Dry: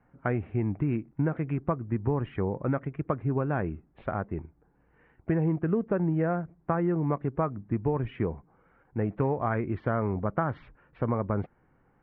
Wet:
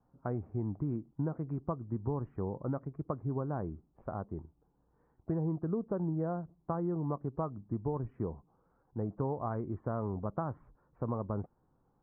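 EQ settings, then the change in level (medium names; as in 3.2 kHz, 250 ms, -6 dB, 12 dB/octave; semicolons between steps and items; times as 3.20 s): Chebyshev low-pass 1.1 kHz, order 3; -6.5 dB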